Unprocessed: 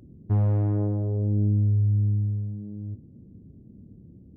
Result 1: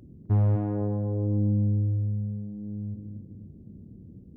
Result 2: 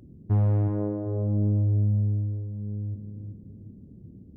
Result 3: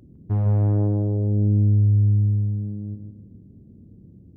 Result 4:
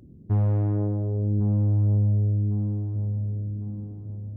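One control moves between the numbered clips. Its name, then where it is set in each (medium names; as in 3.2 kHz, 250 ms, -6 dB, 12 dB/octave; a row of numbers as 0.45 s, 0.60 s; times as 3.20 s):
feedback echo behind a low-pass, time: 256 ms, 380 ms, 155 ms, 1102 ms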